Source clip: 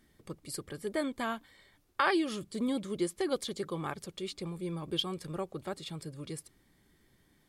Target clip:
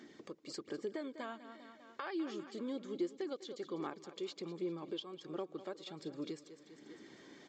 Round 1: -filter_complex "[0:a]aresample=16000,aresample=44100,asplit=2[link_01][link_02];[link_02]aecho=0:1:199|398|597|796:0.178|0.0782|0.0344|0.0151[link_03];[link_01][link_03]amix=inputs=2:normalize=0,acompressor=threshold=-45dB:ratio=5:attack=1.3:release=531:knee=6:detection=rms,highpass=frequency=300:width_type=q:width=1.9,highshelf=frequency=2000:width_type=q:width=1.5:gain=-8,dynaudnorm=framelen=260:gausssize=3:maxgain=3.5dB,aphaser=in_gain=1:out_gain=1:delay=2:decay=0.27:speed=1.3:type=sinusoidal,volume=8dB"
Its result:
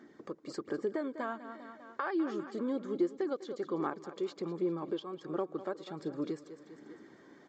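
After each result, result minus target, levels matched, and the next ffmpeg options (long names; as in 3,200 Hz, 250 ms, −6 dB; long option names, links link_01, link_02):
4,000 Hz band −10.0 dB; downward compressor: peak gain reduction −6.5 dB
-filter_complex "[0:a]aresample=16000,aresample=44100,asplit=2[link_01][link_02];[link_02]aecho=0:1:199|398|597|796:0.178|0.0782|0.0344|0.0151[link_03];[link_01][link_03]amix=inputs=2:normalize=0,acompressor=threshold=-45dB:ratio=5:attack=1.3:release=531:knee=6:detection=rms,highpass=frequency=300:width_type=q:width=1.9,dynaudnorm=framelen=260:gausssize=3:maxgain=3.5dB,aphaser=in_gain=1:out_gain=1:delay=2:decay=0.27:speed=1.3:type=sinusoidal,volume=8dB"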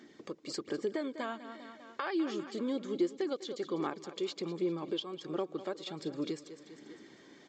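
downward compressor: peak gain reduction −6.5 dB
-filter_complex "[0:a]aresample=16000,aresample=44100,asplit=2[link_01][link_02];[link_02]aecho=0:1:199|398|597|796:0.178|0.0782|0.0344|0.0151[link_03];[link_01][link_03]amix=inputs=2:normalize=0,acompressor=threshold=-53dB:ratio=5:attack=1.3:release=531:knee=6:detection=rms,highpass=frequency=300:width_type=q:width=1.9,dynaudnorm=framelen=260:gausssize=3:maxgain=3.5dB,aphaser=in_gain=1:out_gain=1:delay=2:decay=0.27:speed=1.3:type=sinusoidal,volume=8dB"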